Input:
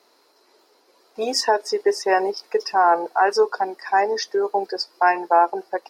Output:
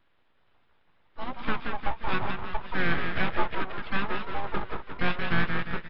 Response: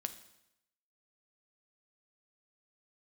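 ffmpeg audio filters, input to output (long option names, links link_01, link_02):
-filter_complex "[0:a]asplit=7[link_01][link_02][link_03][link_04][link_05][link_06][link_07];[link_02]adelay=175,afreqshift=42,volume=-5dB[link_08];[link_03]adelay=350,afreqshift=84,volume=-11.4dB[link_09];[link_04]adelay=525,afreqshift=126,volume=-17.8dB[link_10];[link_05]adelay=700,afreqshift=168,volume=-24.1dB[link_11];[link_06]adelay=875,afreqshift=210,volume=-30.5dB[link_12];[link_07]adelay=1050,afreqshift=252,volume=-36.9dB[link_13];[link_01][link_08][link_09][link_10][link_11][link_12][link_13]amix=inputs=7:normalize=0,aresample=8000,aeval=exprs='abs(val(0))':channel_layout=same,aresample=44100,asplit=4[link_14][link_15][link_16][link_17];[link_15]asetrate=22050,aresample=44100,atempo=2,volume=-16dB[link_18];[link_16]asetrate=33038,aresample=44100,atempo=1.33484,volume=-9dB[link_19];[link_17]asetrate=58866,aresample=44100,atempo=0.749154,volume=-10dB[link_20];[link_14][link_18][link_19][link_20]amix=inputs=4:normalize=0,volume=-8.5dB"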